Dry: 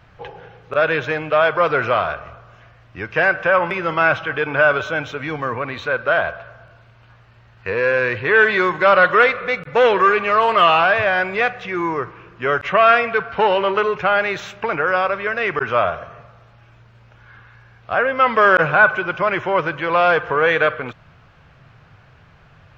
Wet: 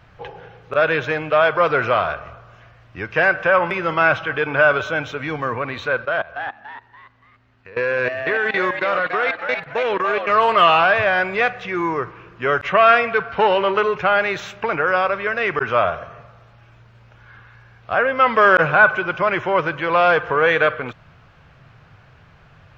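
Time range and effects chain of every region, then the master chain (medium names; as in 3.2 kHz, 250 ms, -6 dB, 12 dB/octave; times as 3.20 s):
6.05–10.30 s: level held to a coarse grid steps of 20 dB + frequency-shifting echo 286 ms, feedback 35%, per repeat +140 Hz, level -6.5 dB
whole clip: none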